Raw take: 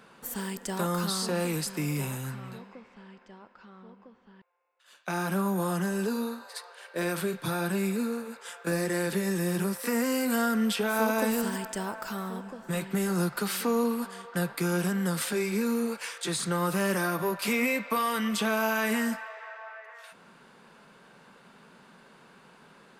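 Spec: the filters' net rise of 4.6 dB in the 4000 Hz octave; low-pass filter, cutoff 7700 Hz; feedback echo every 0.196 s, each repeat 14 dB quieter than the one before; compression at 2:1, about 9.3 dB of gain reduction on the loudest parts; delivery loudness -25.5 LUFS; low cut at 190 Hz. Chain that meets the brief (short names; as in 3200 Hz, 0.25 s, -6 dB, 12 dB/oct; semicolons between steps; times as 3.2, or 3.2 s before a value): HPF 190 Hz; LPF 7700 Hz; bell 4000 Hz +6 dB; compressor 2:1, threshold -40 dBFS; feedback echo 0.196 s, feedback 20%, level -14 dB; gain +12 dB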